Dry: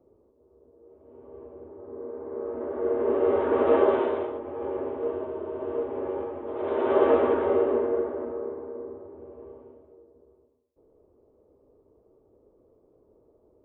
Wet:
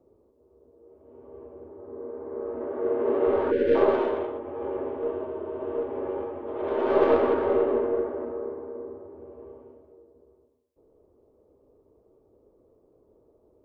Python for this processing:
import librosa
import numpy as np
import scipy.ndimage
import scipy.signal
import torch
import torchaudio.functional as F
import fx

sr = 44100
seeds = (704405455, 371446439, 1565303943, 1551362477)

y = fx.tracing_dist(x, sr, depth_ms=0.087)
y = fx.highpass(y, sr, hz=93.0, slope=12, at=(2.65, 3.27))
y = fx.spec_box(y, sr, start_s=3.51, length_s=0.25, low_hz=590.0, high_hz=1400.0, gain_db=-26)